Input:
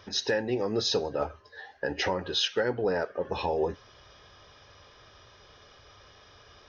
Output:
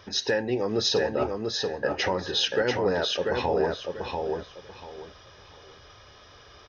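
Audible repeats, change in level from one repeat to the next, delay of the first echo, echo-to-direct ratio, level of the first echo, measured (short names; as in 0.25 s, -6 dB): 3, -12.5 dB, 0.69 s, -3.5 dB, -4.0 dB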